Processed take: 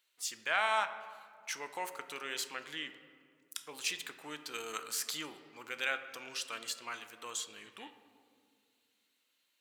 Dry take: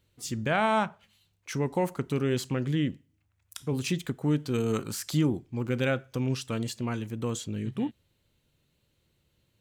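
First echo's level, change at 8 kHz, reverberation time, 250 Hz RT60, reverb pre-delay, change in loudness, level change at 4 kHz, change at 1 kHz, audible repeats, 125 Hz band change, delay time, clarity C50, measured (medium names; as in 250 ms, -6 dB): no echo, 0.0 dB, 2.2 s, 2.7 s, 3 ms, -8.0 dB, 0.0 dB, -5.0 dB, no echo, -36.0 dB, no echo, 11.0 dB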